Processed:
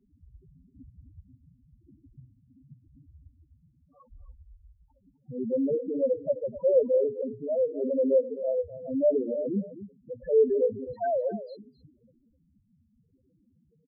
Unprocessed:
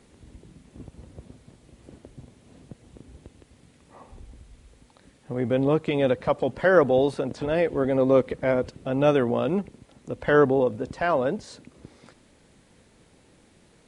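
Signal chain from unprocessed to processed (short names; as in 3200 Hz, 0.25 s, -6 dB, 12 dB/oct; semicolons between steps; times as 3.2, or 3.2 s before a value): notches 60/120/180/240/300/360/420/480 Hz; loudest bins only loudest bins 2; on a send: echo 0.257 s -14 dB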